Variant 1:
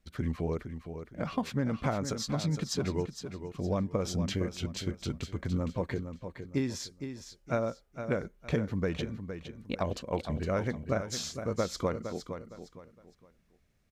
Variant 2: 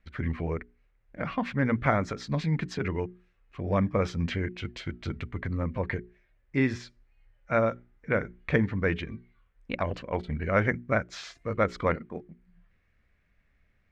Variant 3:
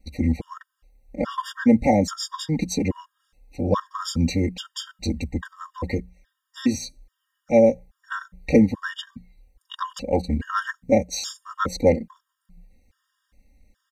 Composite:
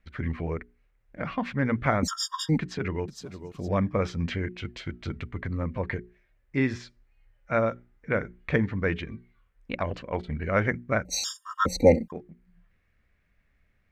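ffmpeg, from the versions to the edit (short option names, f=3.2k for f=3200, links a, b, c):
-filter_complex "[2:a]asplit=2[a][b];[1:a]asplit=4[c][d][e][f];[c]atrim=end=2.032[g];[a]atrim=start=2.028:end=2.582[h];[d]atrim=start=2.578:end=3.082[i];[0:a]atrim=start=3.078:end=3.682[j];[e]atrim=start=3.678:end=11.052[k];[b]atrim=start=11.048:end=12.122[l];[f]atrim=start=12.118[m];[g][h]acrossfade=d=0.004:c1=hsin:c2=hsin[n];[n][i]acrossfade=d=0.004:c1=hsin:c2=hsin[o];[o][j]acrossfade=d=0.004:c1=hsin:c2=hsin[p];[p][k]acrossfade=d=0.004:c1=hsin:c2=hsin[q];[q][l]acrossfade=d=0.004:c1=hsin:c2=hsin[r];[r][m]acrossfade=d=0.004:c1=hsin:c2=hsin"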